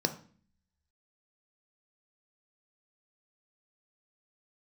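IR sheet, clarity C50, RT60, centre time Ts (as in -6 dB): 13.0 dB, 0.45 s, 9 ms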